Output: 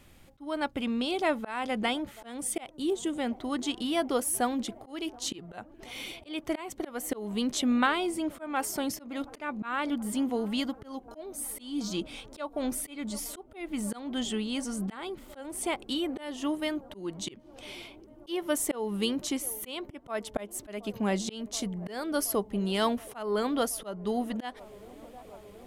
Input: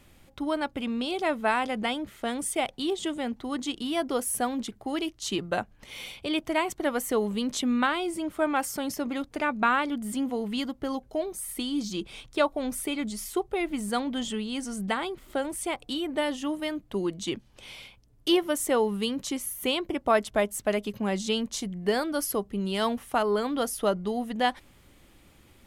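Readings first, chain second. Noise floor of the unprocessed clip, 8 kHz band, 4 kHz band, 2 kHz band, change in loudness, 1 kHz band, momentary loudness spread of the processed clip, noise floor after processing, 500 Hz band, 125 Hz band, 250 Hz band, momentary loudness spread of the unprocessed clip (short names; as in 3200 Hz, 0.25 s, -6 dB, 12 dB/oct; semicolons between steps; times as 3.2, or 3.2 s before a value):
-58 dBFS, -0.5 dB, -3.0 dB, -5.0 dB, -3.0 dB, -5.0 dB, 13 LU, -53 dBFS, -5.0 dB, -1.5 dB, -2.0 dB, 7 LU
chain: band-limited delay 0.726 s, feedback 82%, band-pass 480 Hz, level -23 dB; spectral gain 2.69–3.13, 560–5700 Hz -7 dB; auto swell 0.275 s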